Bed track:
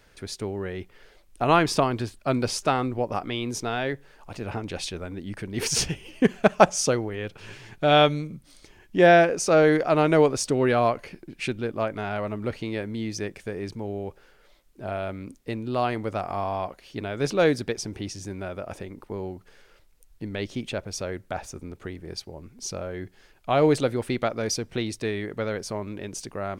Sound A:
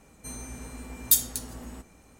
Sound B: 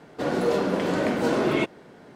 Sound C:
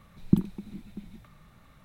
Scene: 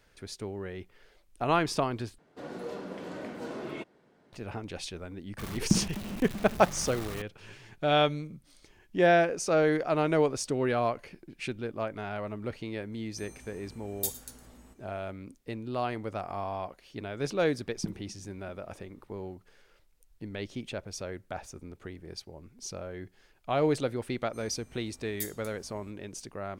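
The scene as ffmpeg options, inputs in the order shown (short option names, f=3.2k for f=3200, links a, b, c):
-filter_complex "[3:a]asplit=2[a][b];[1:a]asplit=2[c][d];[0:a]volume=-6.5dB[e];[a]aeval=exprs='val(0)+0.5*0.0299*sgn(val(0))':c=same[f];[c]aecho=1:1:111:0.133[g];[e]asplit=2[h][i];[h]atrim=end=2.184[j];[2:a]atrim=end=2.15,asetpts=PTS-STARTPTS,volume=-15.5dB[k];[i]atrim=start=4.326[l];[f]atrim=end=1.84,asetpts=PTS-STARTPTS,volume=-4dB,afade=t=in:d=0.004:c=hsin,afade=t=out:st=1.836:d=0.004:c=hsin,adelay=5380[m];[g]atrim=end=2.19,asetpts=PTS-STARTPTS,volume=-12dB,afade=t=in:d=0.004:c=hsin,afade=t=out:st=2.186:d=0.004:c=hsin,adelay=12920[n];[b]atrim=end=1.84,asetpts=PTS-STARTPTS,volume=-13.5dB,afade=t=in:d=0.004:c=hsin,afade=t=out:st=1.836:d=0.004:c=hsin,adelay=17510[o];[d]atrim=end=2.19,asetpts=PTS-STARTPTS,volume=-17dB,afade=t=in:d=0.004:c=hsin,afade=t=out:st=2.186:d=0.004:c=hsin,adelay=24090[p];[j][k]acrossfade=d=0.004:c1=hsin:c2=hsin[q];[q][l]acrossfade=d=0.004:c1=hsin:c2=hsin[r];[r][m][n][o][p]amix=inputs=5:normalize=0"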